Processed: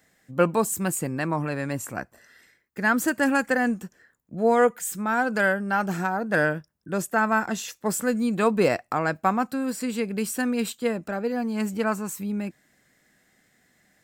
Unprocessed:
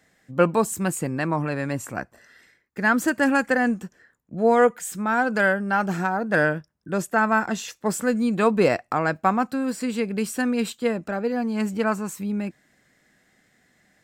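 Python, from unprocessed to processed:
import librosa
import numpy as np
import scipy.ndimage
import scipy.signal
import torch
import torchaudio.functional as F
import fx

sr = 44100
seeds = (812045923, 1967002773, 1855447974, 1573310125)

y = fx.high_shelf(x, sr, hz=10000.0, db=10.0)
y = F.gain(torch.from_numpy(y), -2.0).numpy()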